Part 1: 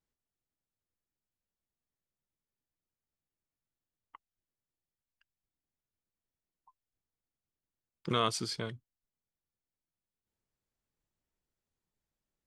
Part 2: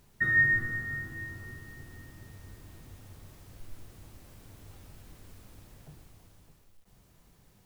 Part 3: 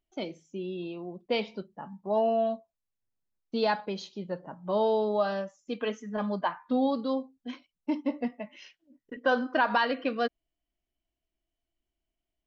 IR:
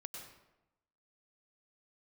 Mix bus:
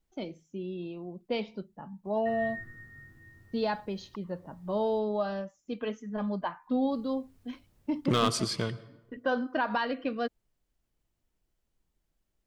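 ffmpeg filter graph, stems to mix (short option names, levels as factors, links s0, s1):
-filter_complex "[0:a]asoftclip=type=hard:threshold=0.0668,volume=1.33,asplit=3[s0][s1][s2];[s1]volume=0.398[s3];[1:a]adelay=2050,volume=0.158,asplit=3[s4][s5][s6];[s4]atrim=end=4.99,asetpts=PTS-STARTPTS,afade=t=out:st=4.986:d=0.004:c=hsin[s7];[s5]atrim=start=4.99:end=6.91,asetpts=PTS-STARTPTS,volume=0[s8];[s6]atrim=start=6.91,asetpts=PTS-STARTPTS,afade=t=in:d=0.004:c=hsin[s9];[s7][s8][s9]concat=n=3:v=0:a=1[s10];[2:a]lowshelf=f=110:g=11.5,volume=0.531[s11];[s2]apad=whole_len=428002[s12];[s10][s12]sidechaincompress=threshold=0.00282:ratio=8:attack=30:release=1050[s13];[3:a]atrim=start_sample=2205[s14];[s3][s14]afir=irnorm=-1:irlink=0[s15];[s0][s13][s11][s15]amix=inputs=4:normalize=0,lowshelf=f=490:g=3.5"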